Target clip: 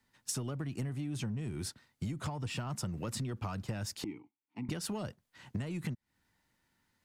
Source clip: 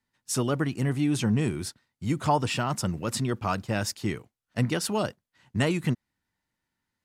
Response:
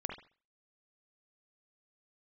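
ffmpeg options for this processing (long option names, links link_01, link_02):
-filter_complex "[0:a]asplit=2[link_01][link_02];[link_02]asoftclip=type=hard:threshold=-27.5dB,volume=-9.5dB[link_03];[link_01][link_03]amix=inputs=2:normalize=0,acrossover=split=170[link_04][link_05];[link_05]acompressor=threshold=-32dB:ratio=6[link_06];[link_04][link_06]amix=inputs=2:normalize=0,asettb=1/sr,asplit=3[link_07][link_08][link_09];[link_07]atrim=end=4.044[link_10];[link_08]atrim=start=4.04:end=4.69,asetpts=PTS-STARTPTS,afade=type=in:duration=0.004:curve=qsin,afade=type=out:start_time=0.646:duration=0.004:curve=qsin,asplit=3[link_11][link_12][link_13];[link_11]bandpass=frequency=300:width_type=q:width=8,volume=0dB[link_14];[link_12]bandpass=frequency=870:width_type=q:width=8,volume=-6dB[link_15];[link_13]bandpass=frequency=2240:width_type=q:width=8,volume=-9dB[link_16];[link_14][link_15][link_16]amix=inputs=3:normalize=0[link_17];[link_09]atrim=start=4.686[link_18];[link_10][link_17]acrossfade=duration=0.004:curve1=hsin:curve2=qsin[link_19];[link_19][link_18]acrossfade=duration=0.004:curve1=qsin:curve2=hsin,acompressor=threshold=-38dB:ratio=12,volume=4dB"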